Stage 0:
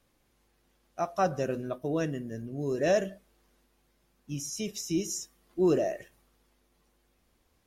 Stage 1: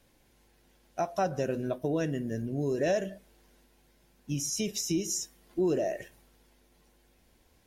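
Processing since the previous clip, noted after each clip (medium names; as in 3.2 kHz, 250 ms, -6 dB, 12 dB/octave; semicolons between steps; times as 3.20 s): band-stop 1.2 kHz, Q 5.5; compression 2.5:1, threshold -34 dBFS, peak gain reduction 9.5 dB; trim +5.5 dB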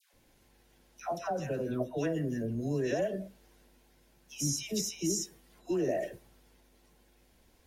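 peak limiter -24 dBFS, peak gain reduction 6.5 dB; phase dispersion lows, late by 135 ms, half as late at 1 kHz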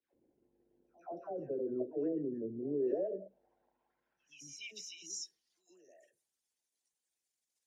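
resonances exaggerated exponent 1.5; pre-echo 126 ms -22 dB; band-pass sweep 370 Hz -> 7.8 kHz, 2.88–5.80 s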